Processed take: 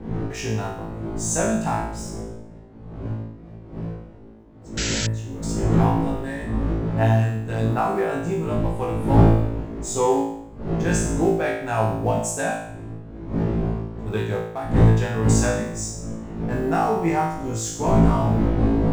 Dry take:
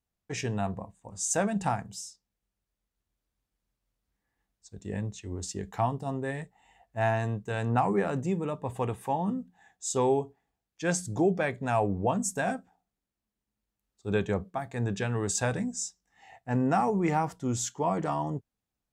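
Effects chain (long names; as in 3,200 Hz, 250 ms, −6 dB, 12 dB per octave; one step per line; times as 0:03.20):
mu-law and A-law mismatch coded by A
wind on the microphone 250 Hz −31 dBFS
on a send: flutter between parallel walls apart 3.1 metres, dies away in 0.72 s
on the sum: sound drawn into the spectrogram noise, 0:04.77–0:05.07, 1,300–7,900 Hz −28 dBFS
level +1 dB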